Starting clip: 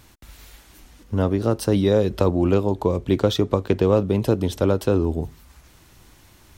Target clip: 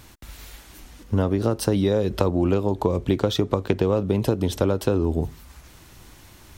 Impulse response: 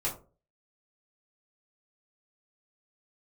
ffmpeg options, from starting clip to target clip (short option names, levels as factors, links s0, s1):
-af "acompressor=threshold=0.1:ratio=6,volume=1.5"